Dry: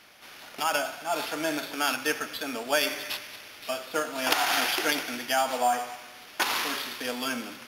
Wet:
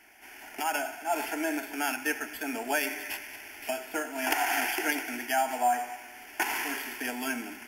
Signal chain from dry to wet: recorder AGC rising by 6.2 dB/s; fixed phaser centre 790 Hz, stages 8

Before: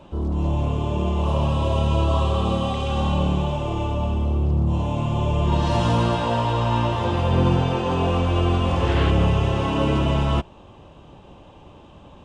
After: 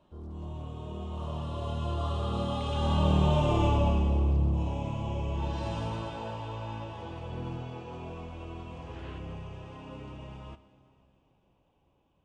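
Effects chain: Doppler pass-by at 3.58, 17 m/s, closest 7.3 m; plate-style reverb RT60 2.9 s, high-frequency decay 1×, DRR 13 dB

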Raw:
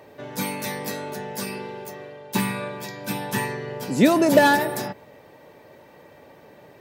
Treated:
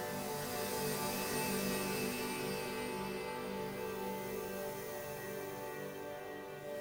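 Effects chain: tube stage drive 28 dB, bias 0.6; Paulstretch 7.4×, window 0.50 s, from 1.26; diffused feedback echo 0.538 s, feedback 42%, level -4.5 dB; gain -4 dB

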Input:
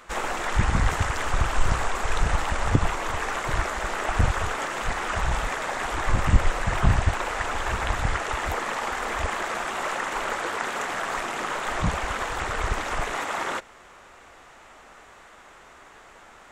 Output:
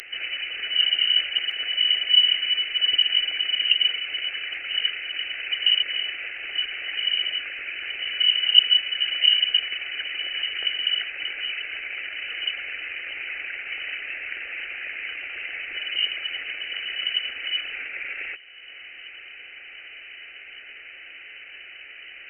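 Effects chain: upward compressor, threshold -27 dBFS; inverted band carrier 4000 Hz; tilt shelf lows -4.5 dB, about 1100 Hz; fixed phaser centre 570 Hz, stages 4; on a send: thinning echo 1.121 s, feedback 75%, level -23 dB; on the sum: speed mistake 45 rpm record played at 33 rpm; gain -4.5 dB

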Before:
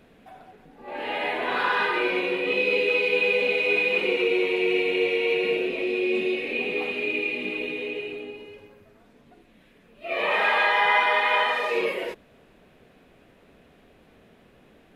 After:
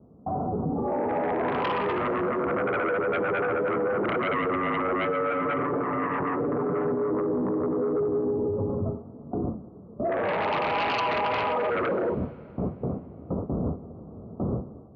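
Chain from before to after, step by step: gate with hold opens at -44 dBFS; steep low-pass 1300 Hz 96 dB/oct; tilt -4.5 dB/oct; sine folder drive 13 dB, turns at -9 dBFS; 5.05–7.1 comb 6.9 ms, depth 68%; AGC gain up to 11 dB; HPF 79 Hz 24 dB/oct; limiter -18.5 dBFS, peak gain reduction 21.5 dB; plate-style reverb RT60 2.9 s, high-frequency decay 0.95×, DRR 17 dB; gain -2 dB

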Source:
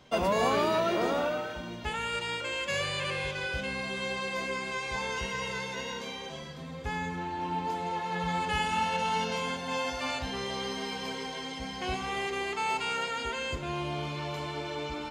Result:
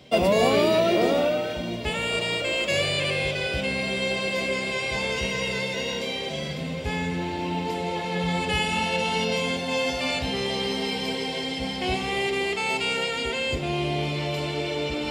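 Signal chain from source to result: HPF 61 Hz; band shelf 1200 Hz -9 dB 1.2 oct; notch 6400 Hz, Q 8.7; reverse; upward compressor, threshold -33 dBFS; reverse; diffused feedback echo 1.8 s, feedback 56%, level -15.5 dB; gain +8 dB

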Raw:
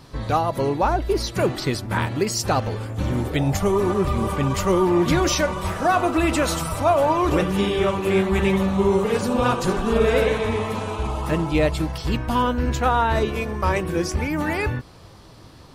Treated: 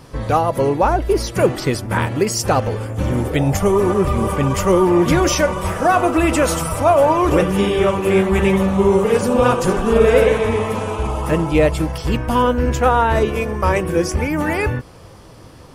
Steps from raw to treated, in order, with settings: thirty-one-band EQ 500 Hz +5 dB, 4000 Hz -8 dB, 10000 Hz +4 dB; gain +4 dB

